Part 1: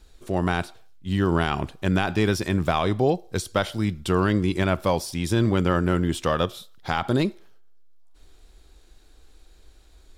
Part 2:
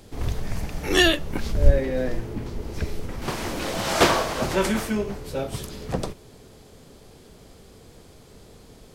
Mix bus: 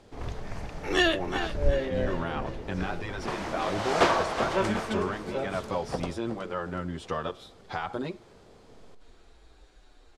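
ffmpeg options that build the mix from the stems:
-filter_complex "[0:a]acompressor=threshold=-38dB:ratio=2,asplit=2[a][b];[b]adelay=7.7,afreqshift=-1[c];[a][c]amix=inputs=2:normalize=1,adelay=850,volume=-1.5dB[d];[1:a]volume=-10dB,asplit=2[e][f];[f]volume=-11dB,aecho=0:1:371|742|1113|1484|1855|2226:1|0.45|0.202|0.0911|0.041|0.0185[g];[d][e][g]amix=inputs=3:normalize=0,lowpass=7.8k,equalizer=f=900:w=0.41:g=8"

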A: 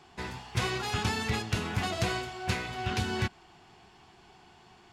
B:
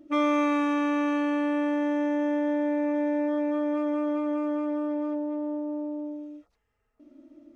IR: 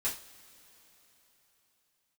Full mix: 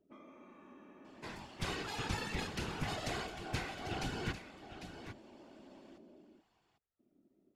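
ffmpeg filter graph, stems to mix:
-filter_complex "[0:a]bandreject=f=60:t=h:w=6,bandreject=f=120:t=h:w=6,bandreject=f=180:t=h:w=6,bandreject=f=240:t=h:w=6,adelay=1050,volume=-2dB,asplit=2[a][b];[b]volume=-11dB[c];[1:a]acompressor=threshold=-34dB:ratio=8,volume=-15dB[d];[c]aecho=0:1:799:1[e];[a][d][e]amix=inputs=3:normalize=0,afftfilt=real='hypot(re,im)*cos(2*PI*random(0))':imag='hypot(re,im)*sin(2*PI*random(1))':win_size=512:overlap=0.75"

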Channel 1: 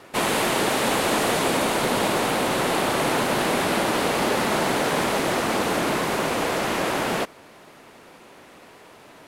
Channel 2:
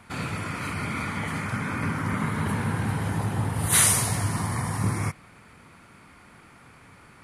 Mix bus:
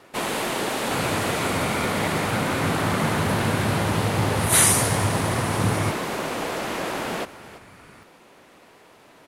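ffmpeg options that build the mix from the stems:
-filter_complex "[0:a]volume=-4dB,asplit=2[a][b];[b]volume=-16dB[c];[1:a]adelay=800,volume=2dB[d];[c]aecho=0:1:334:1[e];[a][d][e]amix=inputs=3:normalize=0"

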